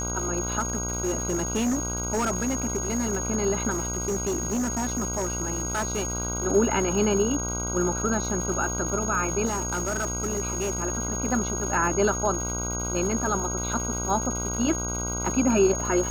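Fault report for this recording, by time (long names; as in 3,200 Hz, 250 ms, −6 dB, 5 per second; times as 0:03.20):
mains buzz 60 Hz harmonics 26 −32 dBFS
surface crackle 330 per second −33 dBFS
whistle 6,600 Hz −30 dBFS
0:00.59–0:03.18: clipping −21.5 dBFS
0:03.70–0:06.13: clipping −23 dBFS
0:09.45–0:10.84: clipping −23 dBFS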